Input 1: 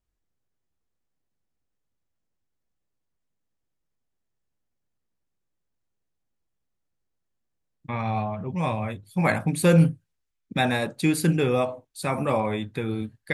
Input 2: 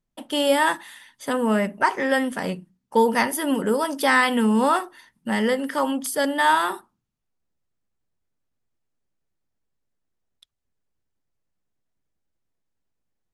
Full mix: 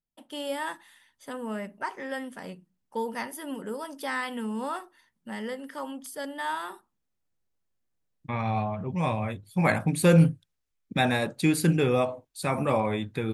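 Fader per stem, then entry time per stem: -1.0, -13.0 dB; 0.40, 0.00 s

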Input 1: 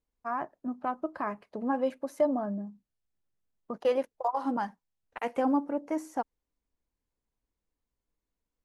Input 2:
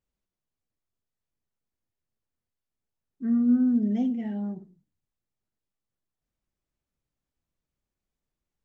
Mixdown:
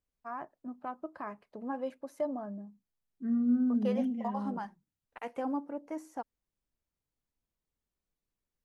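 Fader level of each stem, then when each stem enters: -7.5, -6.0 dB; 0.00, 0.00 s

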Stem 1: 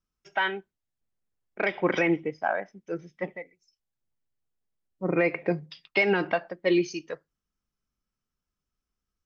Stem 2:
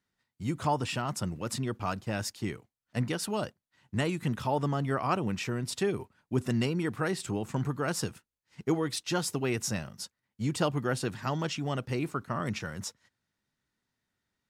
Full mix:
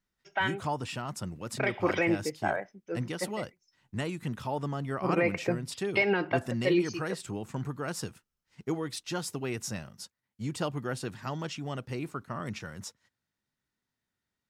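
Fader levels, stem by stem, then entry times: -3.0, -4.0 dB; 0.00, 0.00 s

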